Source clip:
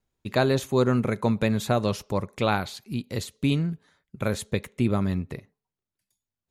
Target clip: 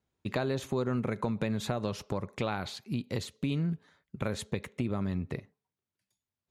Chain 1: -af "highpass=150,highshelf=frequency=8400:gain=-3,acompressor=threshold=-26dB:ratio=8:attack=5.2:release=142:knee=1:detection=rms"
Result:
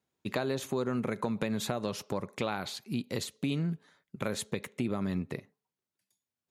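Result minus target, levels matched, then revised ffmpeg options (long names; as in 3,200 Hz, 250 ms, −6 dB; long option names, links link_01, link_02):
8,000 Hz band +5.0 dB; 125 Hz band −3.0 dB
-af "highpass=61,highshelf=frequency=8400:gain=-12.5,acompressor=threshold=-26dB:ratio=8:attack=5.2:release=142:knee=1:detection=rms"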